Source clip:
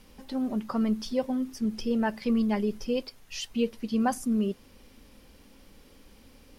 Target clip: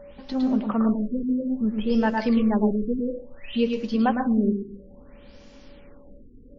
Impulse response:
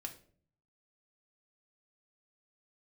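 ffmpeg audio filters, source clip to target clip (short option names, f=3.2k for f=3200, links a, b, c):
-filter_complex "[0:a]aeval=exprs='val(0)+0.00501*sin(2*PI*570*n/s)':c=same,asplit=2[a][b];[1:a]atrim=start_sample=2205,adelay=108[c];[b][c]afir=irnorm=-1:irlink=0,volume=-0.5dB[d];[a][d]amix=inputs=2:normalize=0,afftfilt=real='re*lt(b*sr/1024,470*pow(7400/470,0.5+0.5*sin(2*PI*0.59*pts/sr)))':imag='im*lt(b*sr/1024,470*pow(7400/470,0.5+0.5*sin(2*PI*0.59*pts/sr)))':win_size=1024:overlap=0.75,volume=4dB"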